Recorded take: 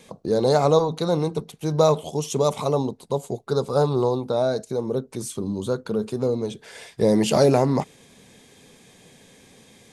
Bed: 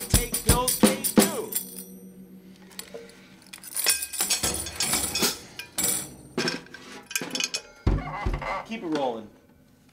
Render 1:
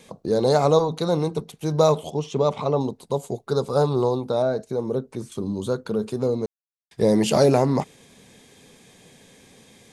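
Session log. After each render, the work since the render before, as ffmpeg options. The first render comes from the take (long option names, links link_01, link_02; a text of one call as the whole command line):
ffmpeg -i in.wav -filter_complex "[0:a]asettb=1/sr,asplit=3[link_01][link_02][link_03];[link_01]atrim=end=2.104[link_04];[link_02]atrim=start=2.1:end=2.81,asetpts=PTS-STARTPTS,afade=type=in:duration=0.004:curve=qsin,afade=type=out:start_time=0.706:duration=0.004:curve=qsin,lowpass=3500[link_05];[link_03]atrim=start=2.806[link_06];[link_04][link_05]acrossfade=duration=0.004:curve1=hsin:curve2=qsin[link_07];[link_07][link_06]acrossfade=duration=0.004:curve1=qsin:curve2=hsin,asettb=1/sr,asplit=3[link_08][link_09][link_10];[link_08]atrim=end=4.424[link_11];[link_09]atrim=start=4.42:end=5.32,asetpts=PTS-STARTPTS,afade=type=in:duration=0.004:curve=qsin,afade=type=out:start_time=0.896:duration=0.004:curve=qsin,acrossover=split=2500[link_12][link_13];[link_13]acompressor=threshold=-50dB:ratio=4:attack=1:release=60[link_14];[link_12][link_14]amix=inputs=2:normalize=0[link_15];[link_10]atrim=start=5.316[link_16];[link_11][link_15]acrossfade=duration=0.004:curve1=hsin:curve2=qsin[link_17];[link_17][link_16]acrossfade=duration=0.004:curve1=qsin:curve2=hsin,asplit=3[link_18][link_19][link_20];[link_18]atrim=end=6.46,asetpts=PTS-STARTPTS,afade=type=out:start_time=6.456:duration=0.004:curve=hsin[link_21];[link_19]atrim=start=6.46:end=6.91,asetpts=PTS-STARTPTS,volume=0[link_22];[link_20]atrim=start=6.91,asetpts=PTS-STARTPTS,afade=type=in:duration=0.004:curve=hsin[link_23];[link_21][link_22][link_23]concat=n=3:v=0:a=1" out.wav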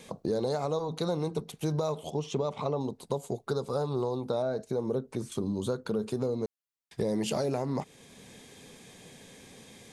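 ffmpeg -i in.wav -af "alimiter=limit=-14dB:level=0:latency=1:release=483,acompressor=threshold=-29dB:ratio=2.5" out.wav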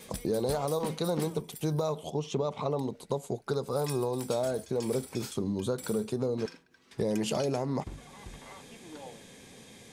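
ffmpeg -i in.wav -i bed.wav -filter_complex "[1:a]volume=-19.5dB[link_01];[0:a][link_01]amix=inputs=2:normalize=0" out.wav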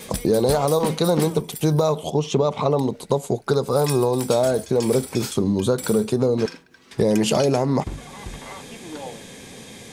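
ffmpeg -i in.wav -af "volume=11dB" out.wav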